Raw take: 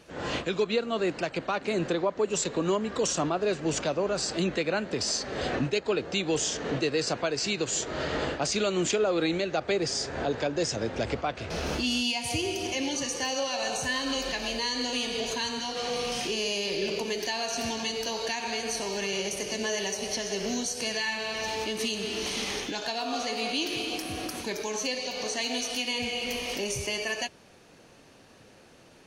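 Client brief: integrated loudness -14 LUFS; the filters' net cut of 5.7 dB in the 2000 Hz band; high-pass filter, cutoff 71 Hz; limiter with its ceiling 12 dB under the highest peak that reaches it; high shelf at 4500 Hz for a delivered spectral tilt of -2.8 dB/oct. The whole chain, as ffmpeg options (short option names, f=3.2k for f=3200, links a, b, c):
-af "highpass=71,equalizer=f=2k:t=o:g=-9,highshelf=f=4.5k:g=4.5,volume=20dB,alimiter=limit=-6dB:level=0:latency=1"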